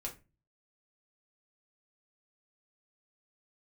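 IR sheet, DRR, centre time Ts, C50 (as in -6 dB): -1.0 dB, 14 ms, 12.0 dB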